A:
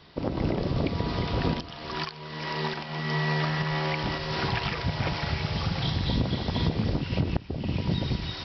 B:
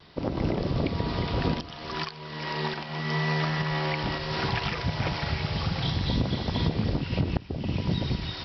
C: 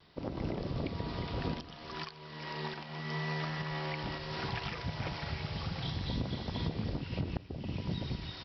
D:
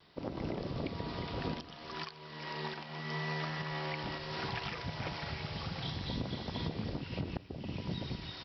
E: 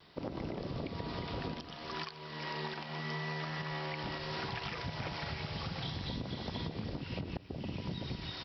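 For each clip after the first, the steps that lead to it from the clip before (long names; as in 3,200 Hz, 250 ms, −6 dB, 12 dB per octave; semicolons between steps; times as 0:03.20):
pitch vibrato 0.68 Hz 19 cents
single-tap delay 223 ms −22 dB; level −9 dB
low-shelf EQ 110 Hz −7 dB
downward compressor, threshold −38 dBFS, peak gain reduction 7 dB; level +3 dB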